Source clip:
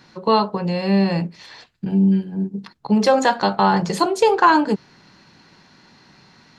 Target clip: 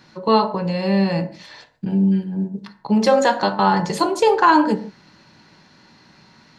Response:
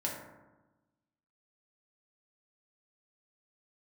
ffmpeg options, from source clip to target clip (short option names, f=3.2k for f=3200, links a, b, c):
-filter_complex "[0:a]asplit=2[a][b];[1:a]atrim=start_sample=2205,afade=t=out:st=0.21:d=0.01,atrim=end_sample=9702[c];[b][c]afir=irnorm=-1:irlink=0,volume=-8.5dB[d];[a][d]amix=inputs=2:normalize=0,volume=-3dB"